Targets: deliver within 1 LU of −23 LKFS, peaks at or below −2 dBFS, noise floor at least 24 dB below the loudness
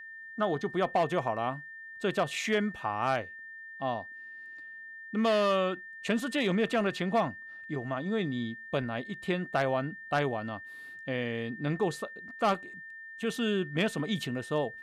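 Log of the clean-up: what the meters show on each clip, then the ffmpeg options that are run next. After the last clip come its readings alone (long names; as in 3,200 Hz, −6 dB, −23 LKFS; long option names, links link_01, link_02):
interfering tone 1,800 Hz; level of the tone −43 dBFS; integrated loudness −31.5 LKFS; sample peak −16.5 dBFS; target loudness −23.0 LKFS
→ -af "bandreject=frequency=1800:width=30"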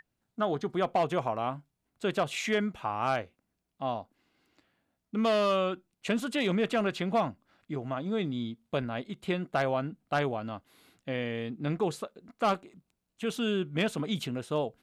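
interfering tone none found; integrated loudness −31.5 LKFS; sample peak −17.5 dBFS; target loudness −23.0 LKFS
→ -af "volume=8.5dB"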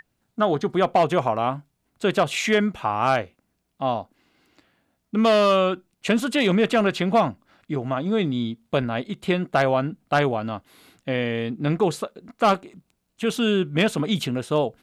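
integrated loudness −23.0 LKFS; sample peak −9.0 dBFS; background noise floor −74 dBFS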